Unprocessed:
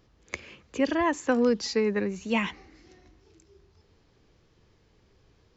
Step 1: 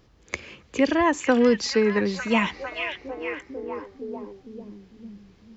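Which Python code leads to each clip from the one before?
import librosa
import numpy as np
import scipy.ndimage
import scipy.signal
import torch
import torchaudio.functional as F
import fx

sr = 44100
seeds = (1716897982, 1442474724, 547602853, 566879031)

y = fx.echo_stepped(x, sr, ms=451, hz=2800.0, octaves=-0.7, feedback_pct=70, wet_db=-2.5)
y = F.gain(torch.from_numpy(y), 4.5).numpy()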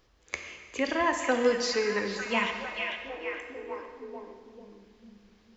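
y = fx.peak_eq(x, sr, hz=150.0, db=-11.5, octaves=2.5)
y = fx.rev_plate(y, sr, seeds[0], rt60_s=1.9, hf_ratio=0.85, predelay_ms=0, drr_db=4.5)
y = F.gain(torch.from_numpy(y), -3.5).numpy()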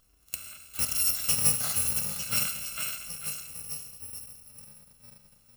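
y = fx.bit_reversed(x, sr, seeds[1], block=128)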